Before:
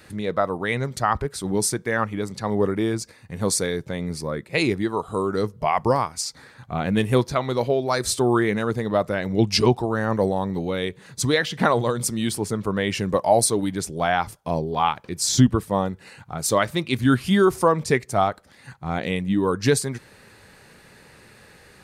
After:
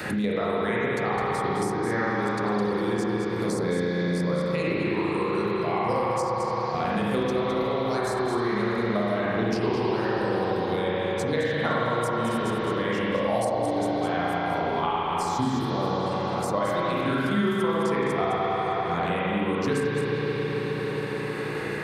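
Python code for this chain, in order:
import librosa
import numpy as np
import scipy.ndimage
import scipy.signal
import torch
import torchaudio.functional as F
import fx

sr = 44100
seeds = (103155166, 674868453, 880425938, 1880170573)

y = scipy.signal.sosfilt(scipy.signal.butter(2, 120.0, 'highpass', fs=sr, output='sos'), x)
y = fx.level_steps(y, sr, step_db=9)
y = y + 10.0 ** (-10.0 / 20.0) * np.pad(y, (int(210 * sr / 1000.0), 0))[:len(y)]
y = fx.rev_spring(y, sr, rt60_s=3.7, pass_ms=(34, 53), chirp_ms=50, drr_db=-9.0)
y = fx.band_squash(y, sr, depth_pct=100)
y = y * 10.0 ** (-9.0 / 20.0)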